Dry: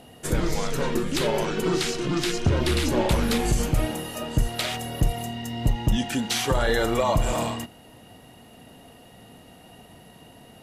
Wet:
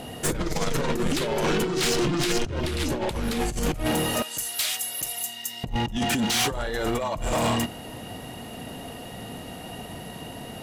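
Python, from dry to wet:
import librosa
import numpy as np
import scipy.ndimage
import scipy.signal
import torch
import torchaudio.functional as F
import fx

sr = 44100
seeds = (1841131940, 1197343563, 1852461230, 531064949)

y = fx.differentiator(x, sr, at=(4.22, 5.64))
y = fx.over_compress(y, sr, threshold_db=-27.0, ratio=-0.5)
y = 10.0 ** (-26.0 / 20.0) * np.tanh(y / 10.0 ** (-26.0 / 20.0))
y = y * 10.0 ** (6.5 / 20.0)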